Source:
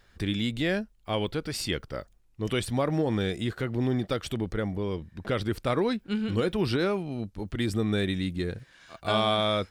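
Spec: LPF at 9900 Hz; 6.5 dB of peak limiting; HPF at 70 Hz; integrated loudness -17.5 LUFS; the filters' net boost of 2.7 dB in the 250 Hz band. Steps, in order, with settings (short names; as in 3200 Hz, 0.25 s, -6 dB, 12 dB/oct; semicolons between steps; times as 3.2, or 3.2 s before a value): HPF 70 Hz; LPF 9900 Hz; bell 250 Hz +3.5 dB; gain +12.5 dB; limiter -6 dBFS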